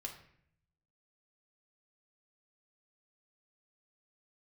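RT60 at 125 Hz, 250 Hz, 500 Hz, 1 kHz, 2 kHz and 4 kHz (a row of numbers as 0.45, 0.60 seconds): 1.2, 0.90, 0.70, 0.60, 0.65, 0.50 seconds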